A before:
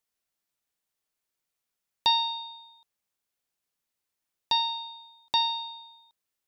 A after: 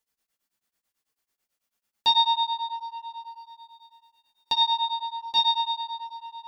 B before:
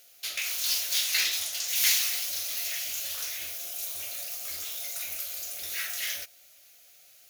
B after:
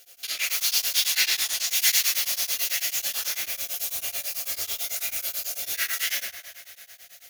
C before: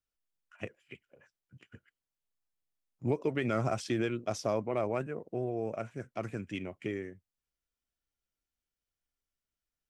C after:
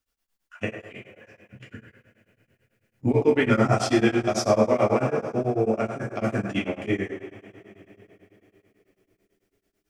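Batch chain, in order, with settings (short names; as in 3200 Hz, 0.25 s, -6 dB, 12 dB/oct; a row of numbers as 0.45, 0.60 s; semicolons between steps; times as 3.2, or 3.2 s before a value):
in parallel at -1 dB: limiter -22 dBFS; on the sum: narrowing echo 0.102 s, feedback 68%, band-pass 860 Hz, level -6 dB; two-slope reverb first 0.45 s, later 4.1 s, from -20 dB, DRR -3 dB; beating tremolo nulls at 9.1 Hz; match loudness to -24 LUFS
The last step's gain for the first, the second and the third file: -3.5, -2.0, +3.5 dB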